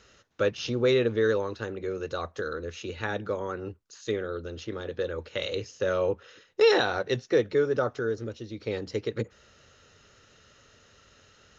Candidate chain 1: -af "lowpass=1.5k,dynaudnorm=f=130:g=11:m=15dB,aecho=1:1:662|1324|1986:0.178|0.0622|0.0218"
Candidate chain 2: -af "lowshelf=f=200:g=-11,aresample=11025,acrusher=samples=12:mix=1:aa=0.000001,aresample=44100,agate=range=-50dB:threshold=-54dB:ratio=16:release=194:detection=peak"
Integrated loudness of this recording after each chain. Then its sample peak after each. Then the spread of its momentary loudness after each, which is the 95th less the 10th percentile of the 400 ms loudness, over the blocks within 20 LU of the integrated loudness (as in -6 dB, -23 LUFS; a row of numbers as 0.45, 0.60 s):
-17.5, -31.0 LUFS; -1.5, -12.5 dBFS; 14, 14 LU